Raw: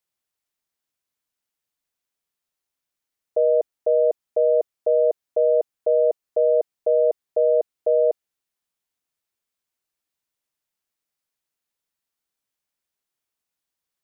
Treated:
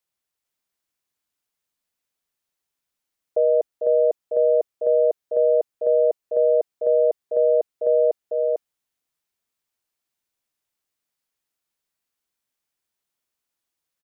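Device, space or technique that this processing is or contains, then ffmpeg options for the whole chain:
ducked delay: -filter_complex "[0:a]asplit=3[a][b][c];[b]adelay=448,volume=-3.5dB[d];[c]apad=whole_len=638540[e];[d][e]sidechaincompress=threshold=-36dB:ratio=8:attack=16:release=206[f];[a][f]amix=inputs=2:normalize=0"

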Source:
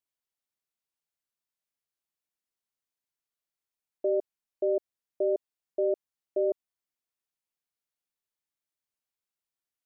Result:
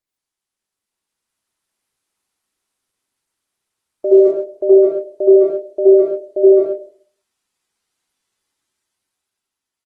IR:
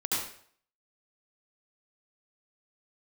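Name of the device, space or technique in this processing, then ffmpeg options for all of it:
speakerphone in a meeting room: -filter_complex "[1:a]atrim=start_sample=2205[a];[0:a][a]afir=irnorm=-1:irlink=0,asplit=2[b][c];[c]adelay=130,highpass=300,lowpass=3.4k,asoftclip=type=hard:threshold=-20.5dB,volume=-24dB[d];[b][d]amix=inputs=2:normalize=0,dynaudnorm=f=180:g=13:m=9dB,volume=2dB" -ar 48000 -c:a libopus -b:a 20k

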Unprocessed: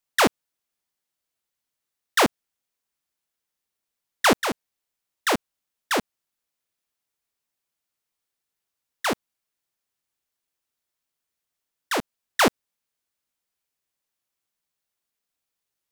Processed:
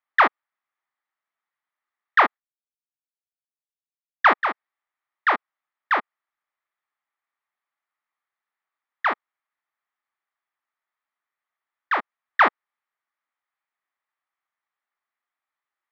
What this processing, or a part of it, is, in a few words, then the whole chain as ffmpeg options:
phone earpiece: -filter_complex "[0:a]asplit=3[a][b][c];[a]afade=t=out:st=2.25:d=0.02[d];[b]agate=range=-33dB:threshold=-26dB:ratio=3:detection=peak,afade=t=in:st=2.25:d=0.02,afade=t=out:st=4.49:d=0.02[e];[c]afade=t=in:st=4.49:d=0.02[f];[d][e][f]amix=inputs=3:normalize=0,highpass=480,equalizer=f=480:t=q:w=4:g=-8,equalizer=f=840:t=q:w=4:g=4,equalizer=f=1.2k:t=q:w=4:g=9,equalizer=f=1.9k:t=q:w=4:g=7,equalizer=f=2.8k:t=q:w=4:g=-6,lowpass=f=3k:w=0.5412,lowpass=f=3k:w=1.3066"

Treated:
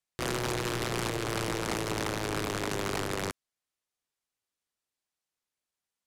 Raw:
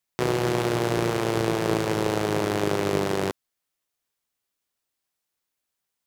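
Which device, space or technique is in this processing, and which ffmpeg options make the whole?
overflowing digital effects unit: -af "aeval=exprs='(mod(7.5*val(0)+1,2)-1)/7.5':c=same,lowpass=11k,volume=-5.5dB"

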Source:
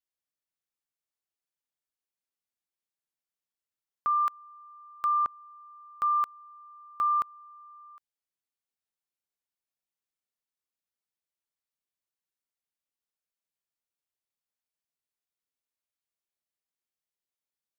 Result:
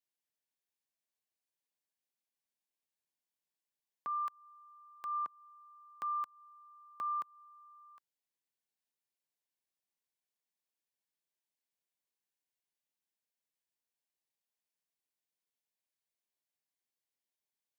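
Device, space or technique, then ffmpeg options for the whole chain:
PA system with an anti-feedback notch: -af "highpass=f=140:w=0.5412,highpass=f=140:w=1.3066,asuperstop=centerf=1300:order=4:qfactor=4.1,alimiter=level_in=6.5dB:limit=-24dB:level=0:latency=1:release=189,volume=-6.5dB,volume=-1.5dB"

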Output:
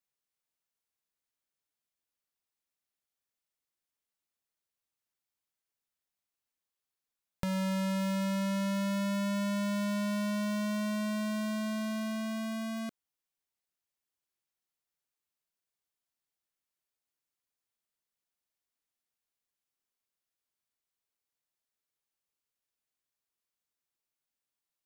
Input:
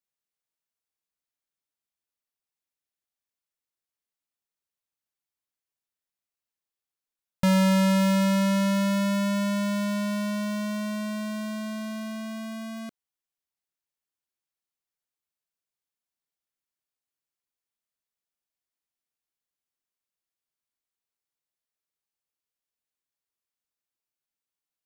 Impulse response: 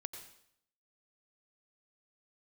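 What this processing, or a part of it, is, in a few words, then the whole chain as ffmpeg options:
serial compression, peaks first: -af "acompressor=threshold=-29dB:ratio=6,acompressor=threshold=-33dB:ratio=2.5"

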